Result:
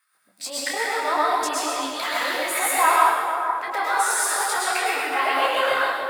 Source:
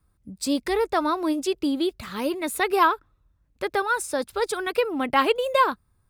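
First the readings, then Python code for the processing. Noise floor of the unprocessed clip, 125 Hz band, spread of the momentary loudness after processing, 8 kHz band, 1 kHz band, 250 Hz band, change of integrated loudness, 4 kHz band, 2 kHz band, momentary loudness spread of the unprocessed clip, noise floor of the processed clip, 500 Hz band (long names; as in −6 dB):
−68 dBFS, can't be measured, 8 LU, +11.0 dB, +4.5 dB, −10.5 dB, +3.0 dB, +5.0 dB, +6.0 dB, 7 LU, −62 dBFS, −2.5 dB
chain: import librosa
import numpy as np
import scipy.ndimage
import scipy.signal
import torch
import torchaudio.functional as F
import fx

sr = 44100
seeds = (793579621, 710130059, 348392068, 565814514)

p1 = fx.transient(x, sr, attack_db=-11, sustain_db=3)
p2 = fx.over_compress(p1, sr, threshold_db=-35.0, ratio=-1.0)
p3 = p1 + (p2 * librosa.db_to_amplitude(0.5))
p4 = fx.filter_lfo_highpass(p3, sr, shape='square', hz=3.4, low_hz=740.0, high_hz=1800.0, q=2.3)
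p5 = p4 + fx.echo_split(p4, sr, split_hz=1700.0, low_ms=446, high_ms=129, feedback_pct=52, wet_db=-6.0, dry=0)
p6 = fx.rev_plate(p5, sr, seeds[0], rt60_s=1.1, hf_ratio=0.9, predelay_ms=95, drr_db=-4.0)
y = fx.detune_double(p6, sr, cents=24)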